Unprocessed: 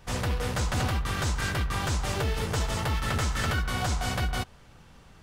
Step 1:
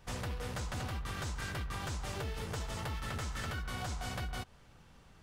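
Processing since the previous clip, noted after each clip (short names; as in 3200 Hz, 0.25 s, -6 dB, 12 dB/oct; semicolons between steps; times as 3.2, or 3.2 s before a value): compressor, threshold -29 dBFS, peak gain reduction 5.5 dB; gain -6.5 dB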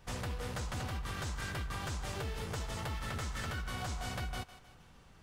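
thinning echo 0.156 s, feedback 48%, level -14 dB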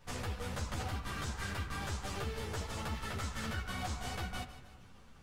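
flange 0.94 Hz, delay 5.3 ms, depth 7.4 ms, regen +87%; on a send at -12 dB: reverb RT60 1.8 s, pre-delay 4 ms; on the sum: ensemble effect; gain +7.5 dB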